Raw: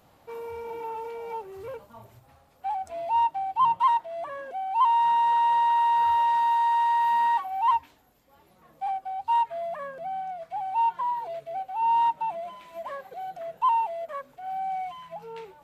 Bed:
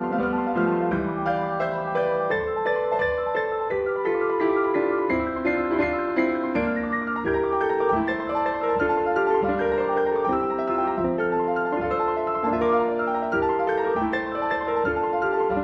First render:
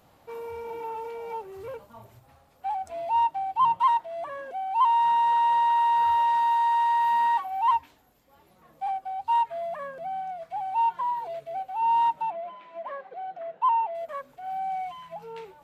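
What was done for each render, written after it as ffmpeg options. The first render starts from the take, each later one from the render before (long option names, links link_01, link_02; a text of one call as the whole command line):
ffmpeg -i in.wav -filter_complex "[0:a]asettb=1/sr,asplit=3[link_01][link_02][link_03];[link_01]atrim=end=12.304[link_04];[link_02]atrim=start=12.3:end=13.95,asetpts=PTS-STARTPTS,afade=type=in:duration=0.004:curve=qsin,afade=type=out:start_time=1.646:duration=0.004:curve=qsin,highpass=220,lowpass=2600[link_05];[link_03]atrim=start=13.946[link_06];[link_04][link_05]acrossfade=duration=0.004:curve1=hsin:curve2=qsin[link_07];[link_07][link_06]acrossfade=duration=0.004:curve1=qsin:curve2=hsin" out.wav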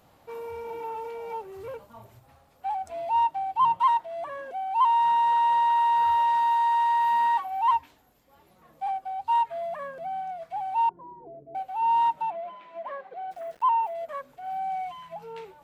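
ffmpeg -i in.wav -filter_complex "[0:a]asettb=1/sr,asplit=3[link_01][link_02][link_03];[link_01]atrim=end=10.894[link_04];[link_02]atrim=start=10.89:end=11.55,asetpts=PTS-STARTPTS,afade=type=in:duration=0.004:curve=qsin,afade=type=out:start_time=0.656:duration=0.004:curve=qsin,lowpass=frequency=330:width_type=q:width=3.7[link_05];[link_03]atrim=start=11.546[link_06];[link_04][link_05]acrossfade=duration=0.004:curve1=hsin:curve2=qsin[link_07];[link_07][link_06]acrossfade=duration=0.004:curve1=qsin:curve2=hsin,asplit=3[link_08][link_09][link_10];[link_08]afade=type=out:start_time=13.3:duration=0.02[link_11];[link_09]aeval=exprs='val(0)*gte(abs(val(0)),0.00266)':channel_layout=same,afade=type=in:start_time=13.3:duration=0.02,afade=type=out:start_time=13.93:duration=0.02[link_12];[link_10]afade=type=in:start_time=13.93:duration=0.02[link_13];[link_11][link_12][link_13]amix=inputs=3:normalize=0" out.wav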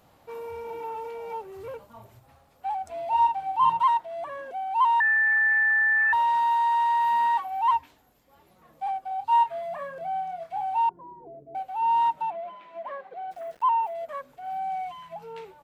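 ffmpeg -i in.wav -filter_complex "[0:a]asplit=3[link_01][link_02][link_03];[link_01]afade=type=out:start_time=3.11:duration=0.02[link_04];[link_02]asplit=2[link_05][link_06];[link_06]adelay=47,volume=-3.5dB[link_07];[link_05][link_07]amix=inputs=2:normalize=0,afade=type=in:start_time=3.11:duration=0.02,afade=type=out:start_time=3.81:duration=0.02[link_08];[link_03]afade=type=in:start_time=3.81:duration=0.02[link_09];[link_04][link_08][link_09]amix=inputs=3:normalize=0,asettb=1/sr,asplit=3[link_10][link_11][link_12];[link_10]atrim=end=5.004[link_13];[link_11]atrim=start=5:end=6.13,asetpts=PTS-STARTPTS,afade=type=in:duration=0.004:curve=qsin,afade=type=out:start_time=1.126:duration=0.004:curve=qsin,lowpass=frequency=2300:width_type=q:width=0.5098,lowpass=frequency=2300:width_type=q:width=0.6013,lowpass=frequency=2300:width_type=q:width=0.9,lowpass=frequency=2300:width_type=q:width=2.563,afreqshift=-2700[link_14];[link_12]atrim=start=6.126[link_15];[link_13][link_14]acrossfade=duration=0.004:curve1=hsin:curve2=qsin[link_16];[link_16][link_15]acrossfade=duration=0.004:curve1=qsin:curve2=hsin,asettb=1/sr,asplit=3[link_17][link_18][link_19];[link_17]atrim=end=9.084[link_20];[link_18]atrim=start=9.08:end=10.78,asetpts=PTS-STARTPTS,afade=type=in:duration=0.004:curve=qsin,afade=type=out:start_time=1.696:duration=0.004:curve=qsin,asplit=2[link_21][link_22];[link_22]adelay=30,volume=-6.5dB[link_23];[link_21][link_23]amix=inputs=2:normalize=0,atrim=end_sample=74970[link_24];[link_19]atrim=start=10.776[link_25];[link_20][link_24]acrossfade=duration=0.004:curve1=hsin:curve2=qsin[link_26];[link_26][link_25]acrossfade=duration=0.004:curve1=qsin:curve2=hsin" out.wav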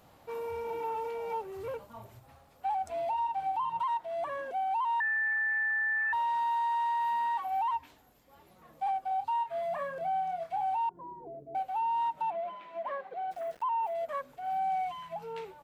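ffmpeg -i in.wav -af "acompressor=threshold=-25dB:ratio=6,alimiter=level_in=2dB:limit=-24dB:level=0:latency=1:release=87,volume=-2dB" out.wav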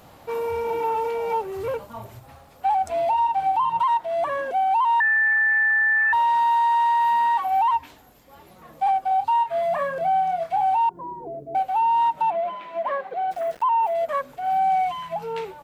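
ffmpeg -i in.wav -af "volume=10.5dB" out.wav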